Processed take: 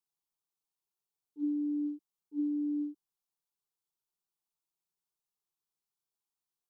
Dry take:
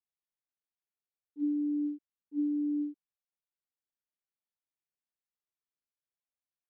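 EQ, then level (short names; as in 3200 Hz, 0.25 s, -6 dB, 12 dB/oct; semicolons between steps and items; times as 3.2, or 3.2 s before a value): fixed phaser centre 380 Hz, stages 8; +4.0 dB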